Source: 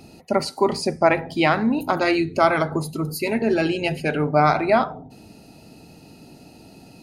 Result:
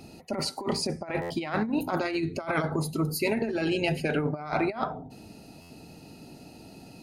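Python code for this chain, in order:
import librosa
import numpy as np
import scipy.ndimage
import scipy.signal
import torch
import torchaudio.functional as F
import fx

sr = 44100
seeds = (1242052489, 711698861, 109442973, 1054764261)

y = fx.over_compress(x, sr, threshold_db=-22.0, ratio=-0.5)
y = fx.buffer_glitch(y, sr, at_s=(1.21, 5.61), block=512, repeats=7)
y = y * librosa.db_to_amplitude(-5.0)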